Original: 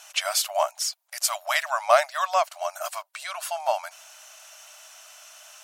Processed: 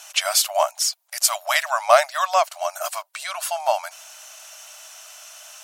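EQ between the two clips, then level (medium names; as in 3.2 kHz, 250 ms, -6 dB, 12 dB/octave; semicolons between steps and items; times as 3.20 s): high-pass 470 Hz; tilt shelf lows +6 dB, about 1.1 kHz; treble shelf 2 kHz +11.5 dB; +1.0 dB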